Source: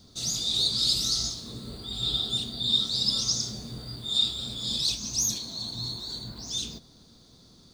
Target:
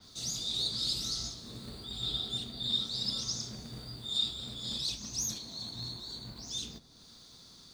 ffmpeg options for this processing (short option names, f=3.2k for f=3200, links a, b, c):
-filter_complex "[0:a]acrossover=split=120|900[a][b][c];[b]acrusher=bits=2:mode=log:mix=0:aa=0.000001[d];[c]acompressor=mode=upward:threshold=-39dB:ratio=2.5[e];[a][d][e]amix=inputs=3:normalize=0,adynamicequalizer=threshold=0.0158:dfrequency=3500:dqfactor=0.7:tfrequency=3500:tqfactor=0.7:attack=5:release=100:ratio=0.375:range=2:mode=cutabove:tftype=highshelf,volume=-6dB"